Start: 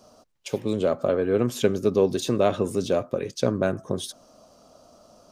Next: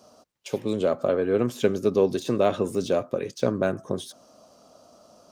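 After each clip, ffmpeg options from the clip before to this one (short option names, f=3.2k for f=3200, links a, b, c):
-af "highpass=f=120:p=1,deesser=0.8"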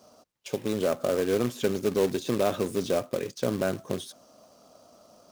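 -filter_complex "[0:a]asplit=2[a][b];[b]alimiter=limit=-15.5dB:level=0:latency=1:release=31,volume=1dB[c];[a][c]amix=inputs=2:normalize=0,acrusher=bits=3:mode=log:mix=0:aa=0.000001,volume=-8.5dB"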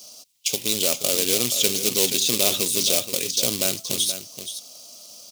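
-filter_complex "[0:a]aexciter=amount=11.8:drive=4:freq=2.4k,asplit=2[a][b];[b]aecho=0:1:476:0.299[c];[a][c]amix=inputs=2:normalize=0,volume=-2.5dB"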